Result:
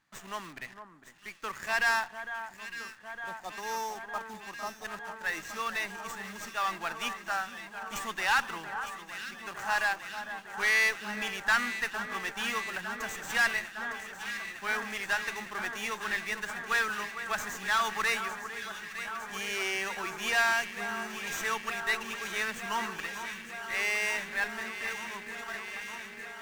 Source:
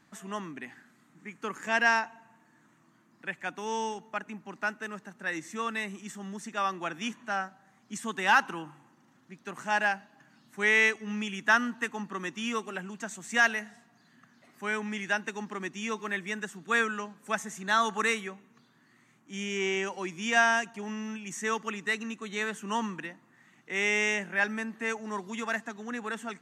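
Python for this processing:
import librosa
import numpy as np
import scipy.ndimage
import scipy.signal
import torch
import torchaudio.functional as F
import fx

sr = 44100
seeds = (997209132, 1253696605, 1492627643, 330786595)

p1 = fx.fade_out_tail(x, sr, length_s=3.22)
p2 = fx.spec_erase(p1, sr, start_s=2.15, length_s=2.7, low_hz=1300.0, high_hz=3500.0)
p3 = fx.leveller(p2, sr, passes=2)
p4 = (np.mod(10.0 ** (29.0 / 20.0) * p3 + 1.0, 2.0) - 1.0) / 10.0 ** (29.0 / 20.0)
p5 = p3 + (p4 * librosa.db_to_amplitude(-11.0))
p6 = fx.peak_eq(p5, sr, hz=260.0, db=-12.5, octaves=2.5)
p7 = p6 + fx.echo_alternate(p6, sr, ms=454, hz=1700.0, feedback_pct=90, wet_db=-9.5, dry=0)
p8 = fx.running_max(p7, sr, window=3)
y = p8 * librosa.db_to_amplitude(-5.0)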